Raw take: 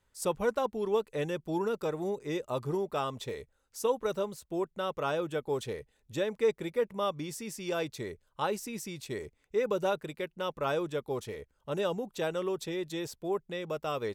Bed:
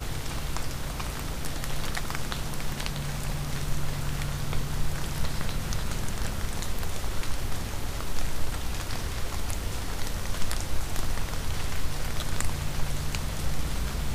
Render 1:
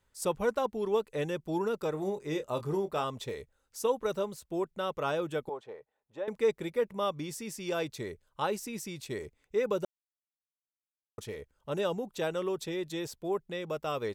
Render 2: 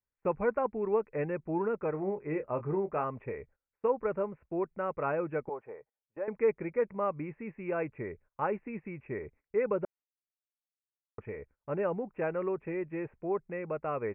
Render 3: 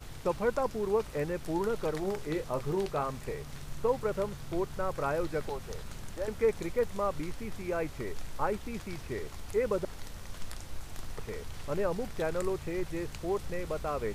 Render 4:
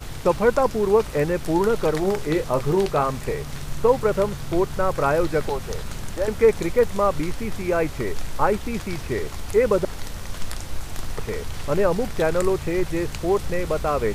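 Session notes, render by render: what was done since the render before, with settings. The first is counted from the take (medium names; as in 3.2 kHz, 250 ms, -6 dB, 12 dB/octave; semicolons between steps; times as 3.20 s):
1.91–3.04 s: doubling 26 ms -10 dB; 5.49–6.28 s: band-pass filter 810 Hz, Q 1.7; 9.85–11.18 s: mute
steep low-pass 2.5 kHz 96 dB/octave; gate -57 dBFS, range -21 dB
add bed -12.5 dB
trim +11 dB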